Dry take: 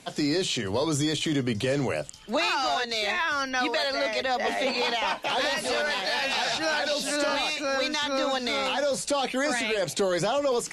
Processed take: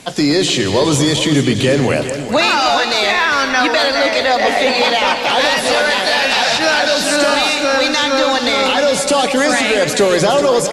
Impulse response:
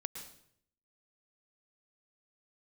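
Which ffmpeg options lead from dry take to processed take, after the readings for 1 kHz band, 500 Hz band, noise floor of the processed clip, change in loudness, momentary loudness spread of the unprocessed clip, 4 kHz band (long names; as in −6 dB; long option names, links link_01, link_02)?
+13.0 dB, +13.0 dB, −20 dBFS, +13.0 dB, 2 LU, +13.0 dB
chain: -filter_complex "[0:a]aecho=1:1:232|413:0.211|0.299,asplit=2[link_01][link_02];[1:a]atrim=start_sample=2205[link_03];[link_02][link_03]afir=irnorm=-1:irlink=0,volume=2.5dB[link_04];[link_01][link_04]amix=inputs=2:normalize=0,volume=6dB"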